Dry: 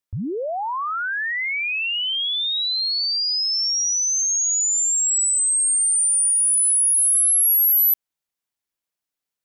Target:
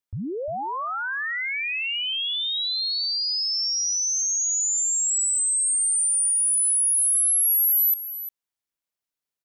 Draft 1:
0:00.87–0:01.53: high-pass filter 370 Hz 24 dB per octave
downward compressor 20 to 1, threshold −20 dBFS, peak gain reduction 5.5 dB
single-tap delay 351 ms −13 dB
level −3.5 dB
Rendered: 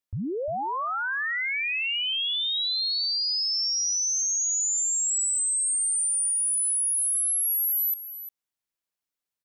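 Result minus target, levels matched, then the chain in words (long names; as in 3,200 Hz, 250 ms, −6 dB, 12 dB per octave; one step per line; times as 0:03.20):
downward compressor: peak gain reduction +5.5 dB
0:00.87–0:01.53: high-pass filter 370 Hz 24 dB per octave
single-tap delay 351 ms −13 dB
level −3.5 dB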